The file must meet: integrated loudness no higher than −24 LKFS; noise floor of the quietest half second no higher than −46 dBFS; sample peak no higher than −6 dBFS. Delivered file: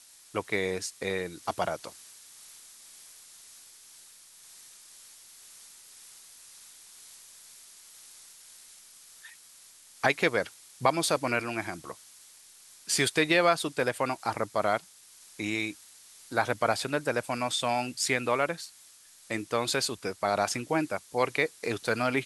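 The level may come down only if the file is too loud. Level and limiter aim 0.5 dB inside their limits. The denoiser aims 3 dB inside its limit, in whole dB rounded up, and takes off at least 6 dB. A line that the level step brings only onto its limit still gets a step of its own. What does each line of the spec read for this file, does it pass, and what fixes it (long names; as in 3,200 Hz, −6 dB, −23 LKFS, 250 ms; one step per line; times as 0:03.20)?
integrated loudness −29.0 LKFS: in spec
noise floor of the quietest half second −55 dBFS: in spec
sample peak −7.5 dBFS: in spec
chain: no processing needed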